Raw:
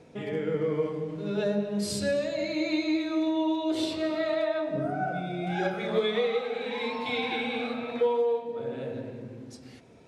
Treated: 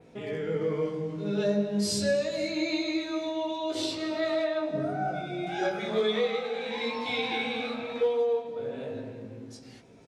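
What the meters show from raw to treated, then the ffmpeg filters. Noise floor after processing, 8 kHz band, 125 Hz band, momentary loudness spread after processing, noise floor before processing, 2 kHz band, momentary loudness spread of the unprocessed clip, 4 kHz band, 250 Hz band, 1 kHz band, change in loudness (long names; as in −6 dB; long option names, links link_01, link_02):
−49 dBFS, +3.5 dB, −1.0 dB, 9 LU, −49 dBFS, 0.0 dB, 8 LU, +2.0 dB, −2.0 dB, −1.0 dB, −0.5 dB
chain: -af "adynamicequalizer=threshold=0.00178:dfrequency=5800:dqfactor=1.3:tfrequency=5800:tqfactor=1.3:attack=5:release=100:ratio=0.375:range=3.5:mode=boostabove:tftype=bell,flanger=delay=17.5:depth=2.3:speed=0.29,aecho=1:1:491:0.0668,volume=2dB"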